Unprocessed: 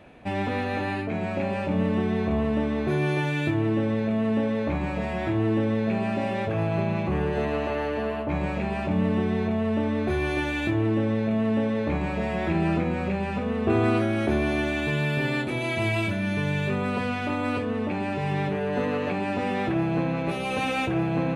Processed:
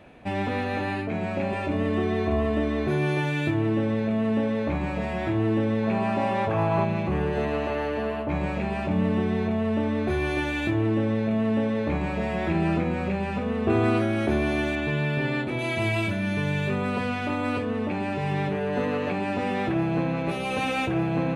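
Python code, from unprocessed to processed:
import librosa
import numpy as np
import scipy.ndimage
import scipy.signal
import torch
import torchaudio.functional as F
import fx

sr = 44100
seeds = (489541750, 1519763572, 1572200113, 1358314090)

y = fx.comb(x, sr, ms=2.9, depth=0.65, at=(1.52, 2.87))
y = fx.peak_eq(y, sr, hz=980.0, db=fx.line((5.82, 6.5), (6.84, 12.5)), octaves=0.77, at=(5.82, 6.84), fade=0.02)
y = fx.high_shelf(y, sr, hz=5600.0, db=-12.0, at=(14.75, 15.59))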